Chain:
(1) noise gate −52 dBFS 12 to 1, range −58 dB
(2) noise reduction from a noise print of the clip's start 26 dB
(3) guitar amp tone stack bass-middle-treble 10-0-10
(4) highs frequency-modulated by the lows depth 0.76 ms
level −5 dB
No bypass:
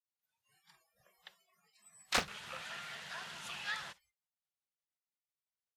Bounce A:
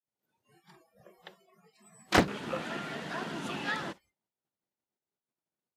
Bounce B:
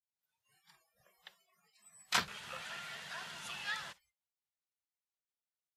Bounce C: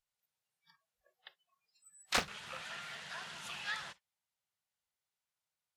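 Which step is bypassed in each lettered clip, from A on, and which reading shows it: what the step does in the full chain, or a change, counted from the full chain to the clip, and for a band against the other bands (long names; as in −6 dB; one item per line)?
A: 3, 250 Hz band +12.0 dB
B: 4, 500 Hz band −4.5 dB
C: 1, change in momentary loudness spread −4 LU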